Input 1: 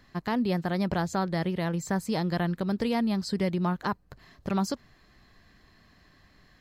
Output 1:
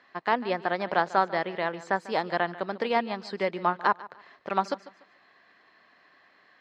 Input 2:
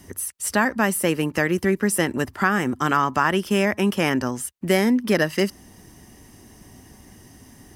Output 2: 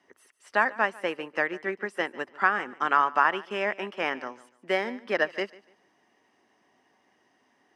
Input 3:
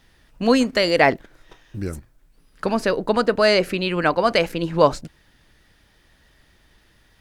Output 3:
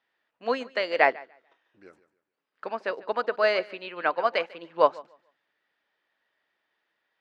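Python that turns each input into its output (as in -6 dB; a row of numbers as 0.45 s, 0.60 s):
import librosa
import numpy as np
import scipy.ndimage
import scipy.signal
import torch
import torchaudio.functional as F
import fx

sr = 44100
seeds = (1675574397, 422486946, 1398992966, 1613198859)

y = fx.bandpass_edges(x, sr, low_hz=530.0, high_hz=2800.0)
y = fx.echo_feedback(y, sr, ms=146, feedback_pct=27, wet_db=-15)
y = fx.upward_expand(y, sr, threshold_db=-38.0, expansion=1.5)
y = y * 10.0 ** (-30 / 20.0) / np.sqrt(np.mean(np.square(y)))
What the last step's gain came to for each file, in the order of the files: +9.0 dB, 0.0 dB, -2.0 dB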